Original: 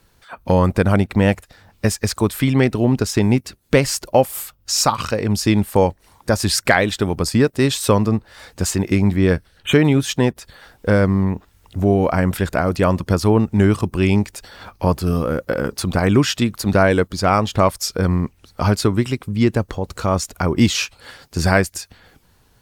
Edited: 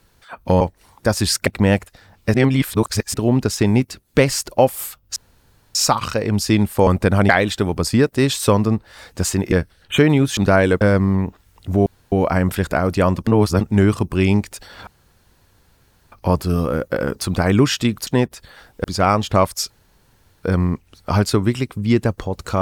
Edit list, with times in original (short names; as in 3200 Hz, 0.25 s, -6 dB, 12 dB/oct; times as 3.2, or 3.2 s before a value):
0.61–1.03 swap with 5.84–6.7
1.9–2.7 reverse
4.72 insert room tone 0.59 s
8.93–9.27 cut
10.12–10.89 swap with 16.64–17.08
11.94 insert room tone 0.26 s
13.09–13.43 reverse
14.69 insert room tone 1.25 s
17.94 insert room tone 0.73 s